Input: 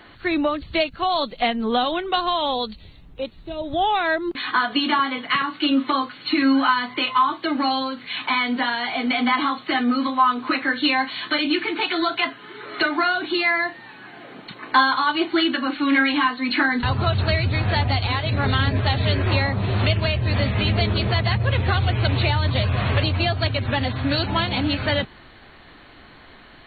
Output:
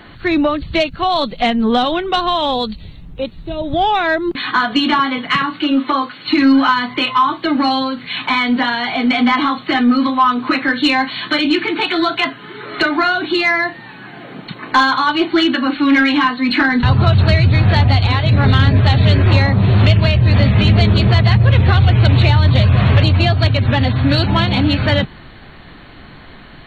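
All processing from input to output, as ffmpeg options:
ffmpeg -i in.wav -filter_complex "[0:a]asettb=1/sr,asplit=3[link_01][link_02][link_03];[link_01]atrim=end=5.624[link_04];[link_02]atrim=start=5.62:end=6.28,asetpts=PTS-STARTPTS,afade=type=in:duration=0.004:curve=qsin,afade=type=out:start_time=0.656:duration=0.004:curve=qsin,acrossover=split=2700[link_05][link_06];[link_06]acompressor=threshold=-37dB:ratio=4:attack=1:release=60[link_07];[link_05][link_07]amix=inputs=2:normalize=0,highpass=52,bass=frequency=250:gain=-8,treble=frequency=4000:gain=0[link_08];[link_03]atrim=start=6.276[link_09];[link_04][link_08]acrossfade=duration=0.004:curve1=hsin:curve2=qsin[link_10];[link_10][link_09]acrossfade=duration=0.004:curve1=qsin:curve2=hsin,equalizer=frequency=160:width=1.4:gain=7,acontrast=73,lowshelf=frequency=100:gain=6,volume=-1dB" out.wav

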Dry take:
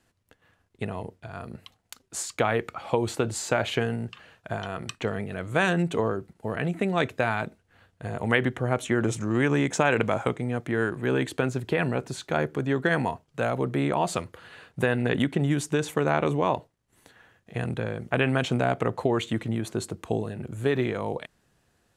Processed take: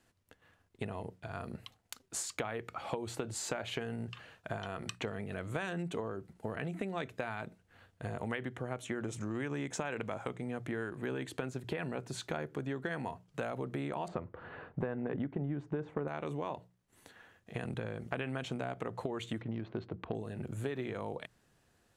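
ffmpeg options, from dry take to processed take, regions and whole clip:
ffmpeg -i in.wav -filter_complex "[0:a]asettb=1/sr,asplit=3[link_01][link_02][link_03];[link_01]atrim=end=14.084[link_04];[link_02]atrim=start=14.08:end=16.08,asetpts=PTS-STARTPTS,afade=type=in:duration=0.004:curve=qsin,afade=type=out:start_time=1.996:duration=0.004:curve=qsin,lowpass=1200,acontrast=82[link_05];[link_03]atrim=start=16.076[link_06];[link_04][link_05]acrossfade=duration=0.004:curve1=hsin:curve2=qsin[link_07];[link_07][link_06]acrossfade=duration=0.004:curve1=qsin:curve2=hsin,asettb=1/sr,asplit=3[link_08][link_09][link_10];[link_08]atrim=end=19.414[link_11];[link_09]atrim=start=19.41:end=20.15,asetpts=PTS-STARTPTS,afade=type=in:duration=0.004:curve=qsin,afade=type=out:start_time=0.736:duration=0.004:curve=qsin,adynamicsmooth=sensitivity=5:basefreq=1600,lowpass=frequency=4500:width=0.5412,lowpass=frequency=4500:width=1.3066[link_12];[link_10]atrim=start=20.146[link_13];[link_11][link_12]acrossfade=duration=0.004:curve1=hsin:curve2=qsin[link_14];[link_14][link_13]acrossfade=duration=0.004:curve1=qsin:curve2=hsin,bandreject=frequency=60:width_type=h:width=6,bandreject=frequency=120:width_type=h:width=6,bandreject=frequency=180:width_type=h:width=6,acompressor=threshold=-32dB:ratio=6,volume=-2.5dB" out.wav

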